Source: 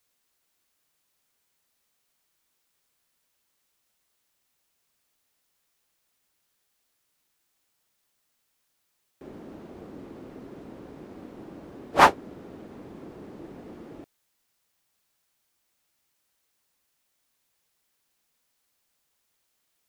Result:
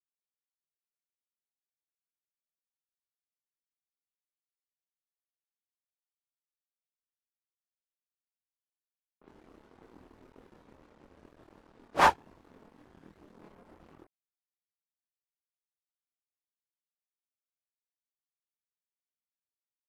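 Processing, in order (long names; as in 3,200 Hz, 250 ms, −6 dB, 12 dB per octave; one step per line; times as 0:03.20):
dead-zone distortion −42.5 dBFS
multi-voice chorus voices 6, 0.6 Hz, delay 25 ms, depth 2.4 ms
low-pass that shuts in the quiet parts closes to 1,500 Hz, open at −50.5 dBFS
level −2.5 dB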